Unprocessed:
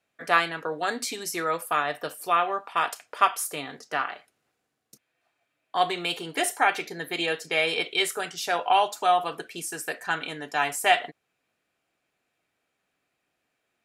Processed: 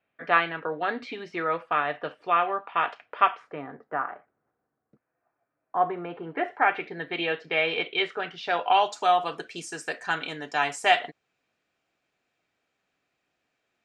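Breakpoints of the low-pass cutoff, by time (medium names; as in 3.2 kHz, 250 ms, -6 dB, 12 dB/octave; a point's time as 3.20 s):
low-pass 24 dB/octave
3.28 s 3 kHz
3.68 s 1.5 kHz
6.07 s 1.5 kHz
7.03 s 3.2 kHz
8.34 s 3.2 kHz
8.95 s 7.2 kHz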